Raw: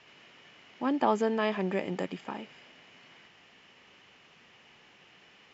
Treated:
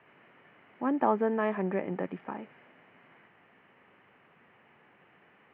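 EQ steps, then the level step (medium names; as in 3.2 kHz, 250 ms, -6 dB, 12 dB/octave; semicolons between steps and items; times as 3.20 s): high-pass 83 Hz; low-pass 2 kHz 24 dB/octave; 0.0 dB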